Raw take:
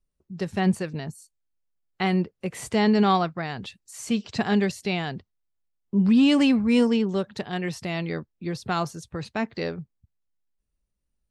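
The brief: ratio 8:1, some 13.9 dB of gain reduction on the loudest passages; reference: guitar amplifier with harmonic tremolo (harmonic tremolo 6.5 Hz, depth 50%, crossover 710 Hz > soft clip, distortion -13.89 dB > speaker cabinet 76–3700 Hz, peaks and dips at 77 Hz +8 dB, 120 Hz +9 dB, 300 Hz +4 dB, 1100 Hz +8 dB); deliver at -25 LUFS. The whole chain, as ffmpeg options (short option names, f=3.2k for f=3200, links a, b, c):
-filter_complex "[0:a]acompressor=threshold=-30dB:ratio=8,acrossover=split=710[a][b];[a]aeval=exprs='val(0)*(1-0.5/2+0.5/2*cos(2*PI*6.5*n/s))':c=same[c];[b]aeval=exprs='val(0)*(1-0.5/2-0.5/2*cos(2*PI*6.5*n/s))':c=same[d];[c][d]amix=inputs=2:normalize=0,asoftclip=threshold=-31dB,highpass=76,equalizer=f=77:t=q:w=4:g=8,equalizer=f=120:t=q:w=4:g=9,equalizer=f=300:t=q:w=4:g=4,equalizer=f=1.1k:t=q:w=4:g=8,lowpass=f=3.7k:w=0.5412,lowpass=f=3.7k:w=1.3066,volume=13.5dB"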